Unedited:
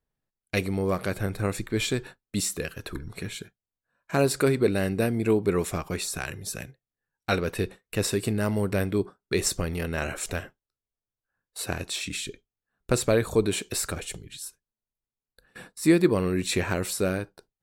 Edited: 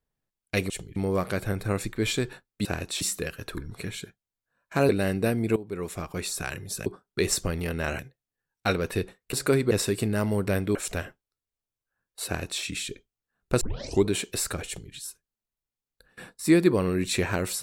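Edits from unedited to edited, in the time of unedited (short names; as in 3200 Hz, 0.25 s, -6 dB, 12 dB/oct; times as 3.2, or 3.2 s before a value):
4.27–4.65 move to 7.96
5.32–6.11 fade in, from -17.5 dB
9–10.13 move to 6.62
11.64–12 copy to 2.39
12.99 tape start 0.44 s
14.05–14.31 copy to 0.7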